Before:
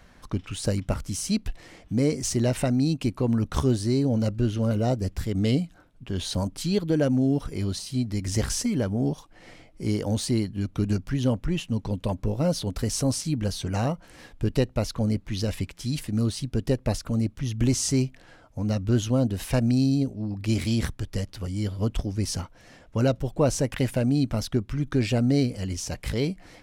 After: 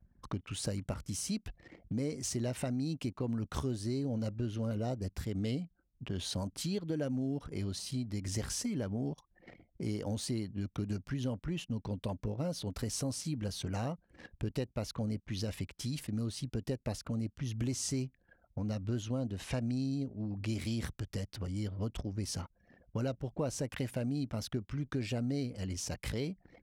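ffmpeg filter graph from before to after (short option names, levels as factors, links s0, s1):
-filter_complex "[0:a]asettb=1/sr,asplit=3[s0][s1][s2];[s0]atrim=end=19.024[s3];[s1]atrim=start=19.02:end=20.48,asetpts=PTS-STARTPTS,afade=t=in:d=0.004:c=qsin,afade=t=out:st=1.456:d=0.004:c=qsin,lowpass=11000,acrossover=split=8500[s4][s5];[s5]acompressor=threshold=0.002:ratio=4:attack=1:release=60[s6];[s4][s6]amix=inputs=2:normalize=0,equalizer=f=5000:t=o:w=0.21:g=-2.5[s7];[s2]atrim=start=20.476[s8];[s3][s7]acrossfade=d=0.004:c1=hsin:c2=qsin[s9];[s9][s8]acrossfade=d=0.004:c1=qsin:c2=hsin,anlmdn=0.0631,highpass=56,acompressor=threshold=0.0126:ratio=2.5"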